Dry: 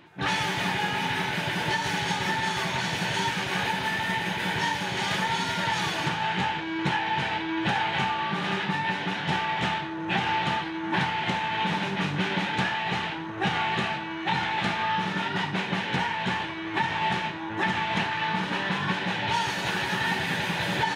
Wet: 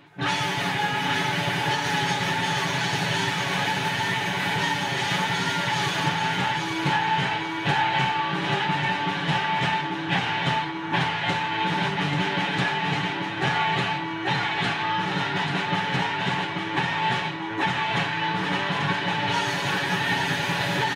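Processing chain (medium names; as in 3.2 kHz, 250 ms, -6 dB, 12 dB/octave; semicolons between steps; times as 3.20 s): comb 7.1 ms; on a send: feedback delay 837 ms, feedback 32%, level -5 dB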